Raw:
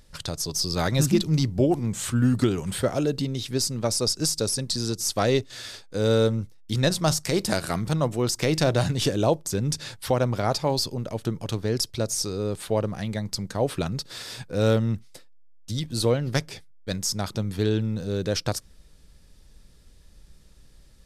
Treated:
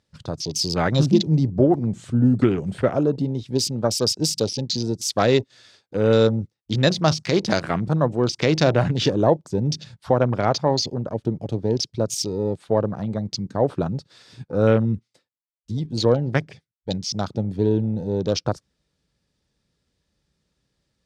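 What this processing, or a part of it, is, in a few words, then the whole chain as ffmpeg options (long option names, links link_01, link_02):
over-cleaned archive recording: -af "highpass=100,lowpass=6700,afwtdn=0.0178,volume=4.5dB"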